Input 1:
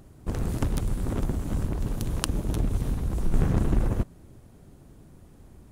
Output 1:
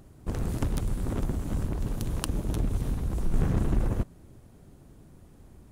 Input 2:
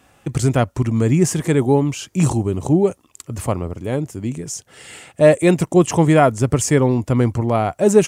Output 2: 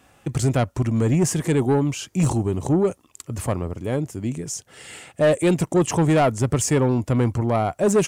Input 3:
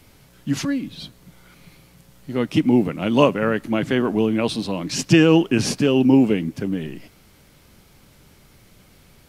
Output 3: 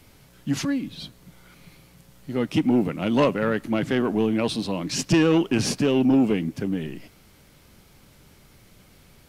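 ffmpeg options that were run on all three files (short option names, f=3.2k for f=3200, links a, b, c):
-af "asoftclip=type=tanh:threshold=-10.5dB,volume=-1.5dB"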